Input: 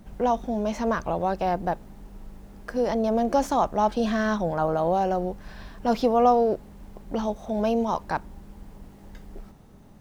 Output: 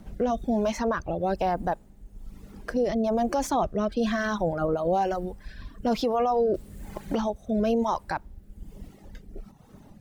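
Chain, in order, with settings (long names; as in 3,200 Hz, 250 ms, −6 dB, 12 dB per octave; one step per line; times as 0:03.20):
rotating-speaker cabinet horn 1.1 Hz
reverb reduction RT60 1.5 s
brickwall limiter −21.5 dBFS, peak gain reduction 9 dB
0:06.54–0:07.35: multiband upward and downward compressor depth 70%
level +5 dB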